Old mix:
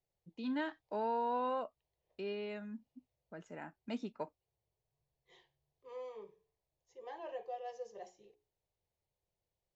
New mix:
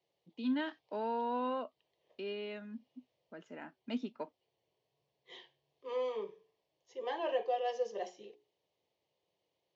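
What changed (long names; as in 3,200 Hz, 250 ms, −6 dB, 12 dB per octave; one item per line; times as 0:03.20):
second voice +10.5 dB
master: add loudspeaker in its box 240–6,000 Hz, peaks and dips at 250 Hz +8 dB, 800 Hz −3 dB, 3,100 Hz +6 dB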